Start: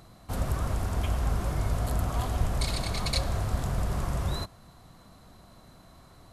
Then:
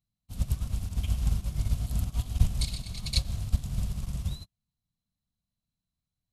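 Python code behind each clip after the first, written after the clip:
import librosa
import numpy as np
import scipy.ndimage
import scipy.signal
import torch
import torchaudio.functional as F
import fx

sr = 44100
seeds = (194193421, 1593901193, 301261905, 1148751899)

y = fx.band_shelf(x, sr, hz=770.0, db=-14.5, octaves=3.0)
y = fx.upward_expand(y, sr, threshold_db=-48.0, expansion=2.5)
y = F.gain(torch.from_numpy(y), 6.5).numpy()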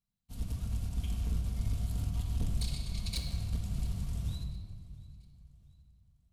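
y = 10.0 ** (-24.0 / 20.0) * np.tanh(x / 10.0 ** (-24.0 / 20.0))
y = fx.echo_feedback(y, sr, ms=691, feedback_pct=43, wet_db=-22.0)
y = fx.room_shoebox(y, sr, seeds[0], volume_m3=2700.0, walls='mixed', distance_m=1.7)
y = F.gain(torch.from_numpy(y), -5.0).numpy()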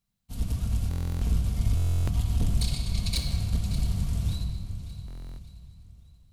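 y = fx.echo_feedback(x, sr, ms=578, feedback_pct=43, wet_db=-14.0)
y = fx.buffer_glitch(y, sr, at_s=(0.89, 1.75, 5.06), block=1024, repeats=13)
y = F.gain(torch.from_numpy(y), 7.5).numpy()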